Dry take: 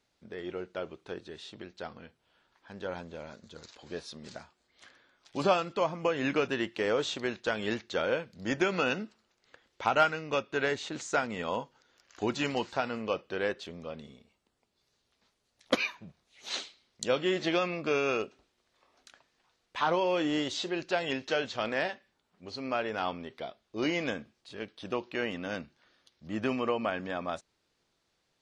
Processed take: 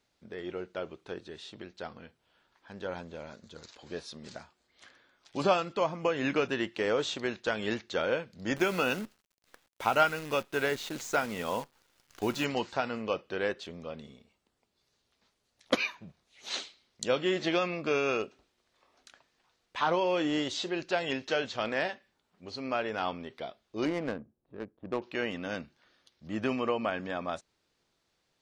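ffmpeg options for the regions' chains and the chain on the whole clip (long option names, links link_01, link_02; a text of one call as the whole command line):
ffmpeg -i in.wav -filter_complex "[0:a]asettb=1/sr,asplit=3[link_01][link_02][link_03];[link_01]atrim=end=8.564[link_04];[link_02]atrim=start=8.56:end=12.45,asetpts=PTS-STARTPTS,afade=type=in:duration=0.004:curve=qsin,afade=type=out:start_time=3.886:duration=0.004:curve=qsin,bandreject=frequency=1800:width=25,acrusher=bits=8:dc=4:mix=0:aa=0.000001[link_05];[link_03]atrim=start=12.446[link_06];[link_04][link_05]acrossfade=duration=0.004:curve1=hsin:curve2=qsin[link_07];[link_07][link_06]acrossfade=duration=0.004:curve1=qsin:curve2=hsin,asettb=1/sr,asplit=3[link_08][link_09][link_10];[link_08]atrim=end=23.854[link_11];[link_09]atrim=start=23.85:end=25.02,asetpts=PTS-STARTPTS,afade=type=in:duration=0.004:curve=qsin,afade=type=out:start_time=1.166:duration=0.004:curve=qsin,lowpass=2600,adynamicsmooth=sensitivity=3:basefreq=520[link_12];[link_10]atrim=start=25.016[link_13];[link_11][link_12]acrossfade=duration=0.004:curve1=hsin:curve2=qsin[link_14];[link_14][link_13]acrossfade=duration=0.004:curve1=qsin:curve2=hsin" out.wav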